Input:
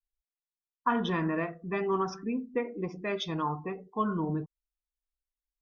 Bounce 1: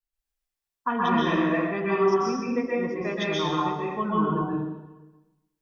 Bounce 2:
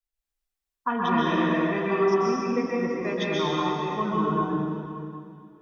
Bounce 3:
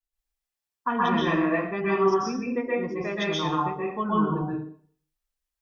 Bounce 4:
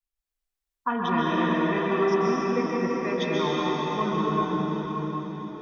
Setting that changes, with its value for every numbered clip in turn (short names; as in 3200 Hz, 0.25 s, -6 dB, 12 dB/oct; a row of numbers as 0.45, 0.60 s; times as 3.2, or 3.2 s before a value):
plate-style reverb, RT60: 1.1, 2.4, 0.52, 5.2 s